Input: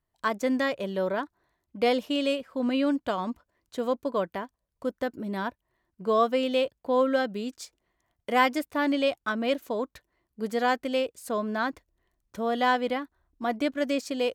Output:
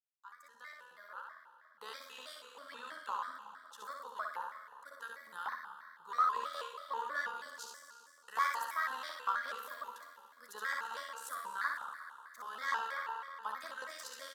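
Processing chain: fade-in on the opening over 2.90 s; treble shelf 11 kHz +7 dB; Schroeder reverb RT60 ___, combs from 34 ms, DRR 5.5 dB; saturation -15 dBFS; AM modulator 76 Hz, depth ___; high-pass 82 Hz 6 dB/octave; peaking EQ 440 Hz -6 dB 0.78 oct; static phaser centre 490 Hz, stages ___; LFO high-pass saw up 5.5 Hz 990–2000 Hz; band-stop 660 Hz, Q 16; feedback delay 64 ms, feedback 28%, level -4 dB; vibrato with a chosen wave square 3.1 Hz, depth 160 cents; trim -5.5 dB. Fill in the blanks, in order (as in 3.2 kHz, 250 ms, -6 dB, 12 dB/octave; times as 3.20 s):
2.3 s, 40%, 8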